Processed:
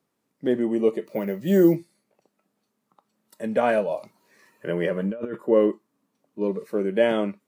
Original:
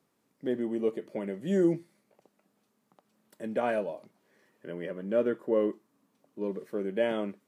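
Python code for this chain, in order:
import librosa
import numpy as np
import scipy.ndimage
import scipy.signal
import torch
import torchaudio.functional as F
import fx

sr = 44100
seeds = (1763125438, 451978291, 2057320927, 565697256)

y = fx.resample_bad(x, sr, factor=3, down='none', up='hold', at=(1.06, 1.76))
y = fx.over_compress(y, sr, threshold_db=-36.0, ratio=-1.0, at=(3.9, 5.35), fade=0.02)
y = fx.noise_reduce_blind(y, sr, reduce_db=10)
y = y * librosa.db_to_amplitude(8.0)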